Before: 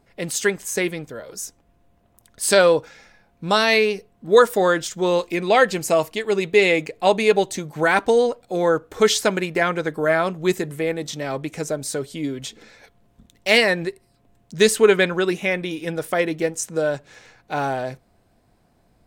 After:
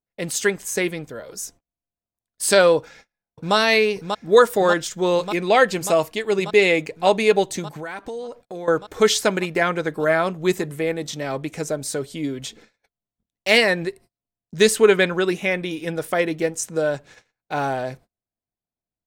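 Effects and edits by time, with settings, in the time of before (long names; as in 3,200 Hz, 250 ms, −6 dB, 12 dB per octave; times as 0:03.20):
0:02.78–0:03.55: delay throw 590 ms, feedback 80%, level −6 dB
0:07.76–0:08.68: downward compressor 4 to 1, threshold −31 dBFS
whole clip: noise gate −44 dBFS, range −34 dB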